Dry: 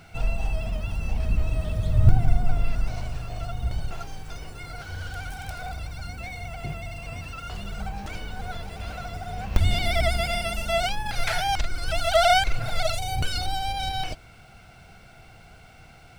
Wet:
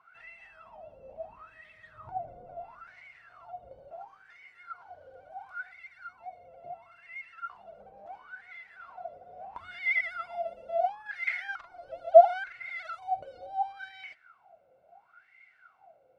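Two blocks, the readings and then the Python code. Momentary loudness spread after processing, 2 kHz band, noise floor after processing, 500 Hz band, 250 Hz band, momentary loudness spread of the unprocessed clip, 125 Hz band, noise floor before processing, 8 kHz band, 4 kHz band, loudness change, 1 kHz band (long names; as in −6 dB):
19 LU, −4.5 dB, −65 dBFS, +1.5 dB, below −25 dB, 15 LU, below −35 dB, −50 dBFS, below −30 dB, −24.5 dB, −1.0 dB, −3.0 dB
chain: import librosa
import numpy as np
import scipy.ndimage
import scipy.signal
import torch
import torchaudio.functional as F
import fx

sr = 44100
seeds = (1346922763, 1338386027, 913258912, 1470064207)

y = fx.wah_lfo(x, sr, hz=0.73, low_hz=520.0, high_hz=2100.0, q=22.0)
y = F.gain(torch.from_numpy(y), 8.5).numpy()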